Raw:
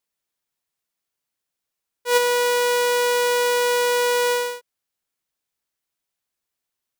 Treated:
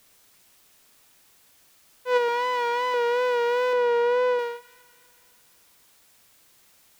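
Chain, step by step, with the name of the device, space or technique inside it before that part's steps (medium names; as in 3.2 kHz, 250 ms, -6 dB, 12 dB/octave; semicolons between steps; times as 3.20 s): high-pass 240 Hz 6 dB/octave; cassette deck with a dirty head (tape spacing loss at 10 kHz 32 dB; wow and flutter 47 cents; white noise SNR 31 dB); 2.28–2.94 s: comb 3 ms, depth 57%; 3.73–4.39 s: tilt EQ -2 dB/octave; feedback echo behind a high-pass 246 ms, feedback 54%, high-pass 1.5 kHz, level -19 dB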